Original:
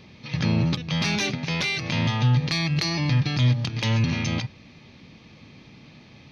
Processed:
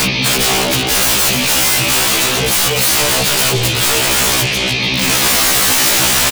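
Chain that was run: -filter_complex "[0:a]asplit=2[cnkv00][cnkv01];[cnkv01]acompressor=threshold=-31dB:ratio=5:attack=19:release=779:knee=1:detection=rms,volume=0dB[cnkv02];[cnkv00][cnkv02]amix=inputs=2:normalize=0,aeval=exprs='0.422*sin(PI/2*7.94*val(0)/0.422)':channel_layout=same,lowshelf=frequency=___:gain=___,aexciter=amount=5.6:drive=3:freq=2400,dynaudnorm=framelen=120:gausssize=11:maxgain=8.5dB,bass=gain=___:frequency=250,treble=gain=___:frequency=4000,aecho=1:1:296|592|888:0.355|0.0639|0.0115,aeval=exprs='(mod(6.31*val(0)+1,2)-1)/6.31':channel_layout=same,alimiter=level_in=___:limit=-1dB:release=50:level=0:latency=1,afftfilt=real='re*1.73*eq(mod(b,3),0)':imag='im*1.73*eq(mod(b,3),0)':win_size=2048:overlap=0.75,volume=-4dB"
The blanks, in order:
150, -3, -2, -12, 26dB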